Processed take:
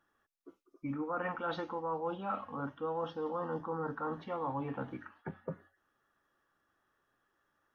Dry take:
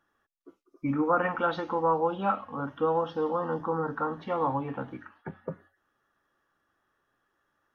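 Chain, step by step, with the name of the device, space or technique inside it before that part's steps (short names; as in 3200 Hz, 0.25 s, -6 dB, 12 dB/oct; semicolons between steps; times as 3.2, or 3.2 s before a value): compression on the reversed sound (reverse; compressor 6:1, threshold -31 dBFS, peak gain reduction 10.5 dB; reverse); gain -2.5 dB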